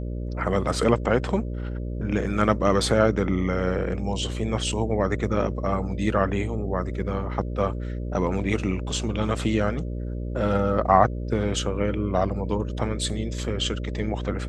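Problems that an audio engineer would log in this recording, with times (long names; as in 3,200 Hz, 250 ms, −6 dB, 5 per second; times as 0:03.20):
mains buzz 60 Hz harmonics 10 −30 dBFS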